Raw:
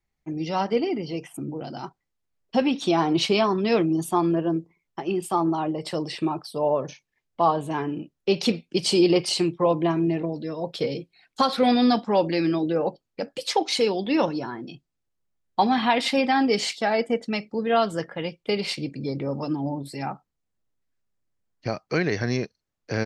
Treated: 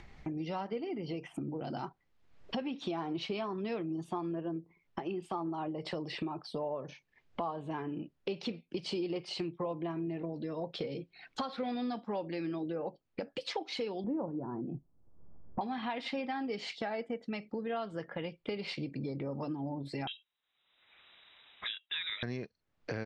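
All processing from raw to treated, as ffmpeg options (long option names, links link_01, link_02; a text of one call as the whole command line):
ffmpeg -i in.wav -filter_complex "[0:a]asettb=1/sr,asplit=3[link_01][link_02][link_03];[link_01]atrim=end=14.044[link_04];[link_02]atrim=start=14.04:end=15.61,asetpts=PTS-STARTPTS,afade=type=in:duration=0.004:curve=qsin,afade=type=out:start_time=1.566:duration=0.004:curve=qsin,lowpass=frequency=1100:width=0.5412,lowpass=frequency=1100:width=1.3066,lowshelf=frequency=460:gain=8[link_05];[link_03]atrim=start=15.606[link_06];[link_04][link_05]acrossfade=duration=0.004:curve1=hsin:curve2=qsin[link_07];[link_07][link_06]acrossfade=duration=0.004:curve1=qsin:curve2=hsin,asettb=1/sr,asplit=3[link_08][link_09][link_10];[link_08]atrim=end=20.074[link_11];[link_09]atrim=start=20.07:end=22.23,asetpts=PTS-STARTPTS,afade=type=in:duration=0.004:curve=qsin,afade=type=out:start_time=2.156:duration=0.004:curve=qsin,highpass=53,equalizer=frequency=71:width_type=o:width=1.8:gain=-12.5,lowpass=frequency=3400:width_type=q:width=0.5098,lowpass=frequency=3400:width_type=q:width=0.6013,lowpass=frequency=3400:width_type=q:width=0.9,lowpass=frequency=3400:width_type=q:width=2.563,afreqshift=-4000[link_12];[link_10]atrim=start=22.226[link_13];[link_11][link_12]acrossfade=duration=0.004:curve1=hsin:curve2=qsin[link_14];[link_14][link_13]acrossfade=duration=0.004:curve1=qsin:curve2=hsin,acompressor=mode=upward:threshold=-23dB:ratio=2.5,lowpass=3500,acompressor=threshold=-30dB:ratio=4,volume=-5dB" out.wav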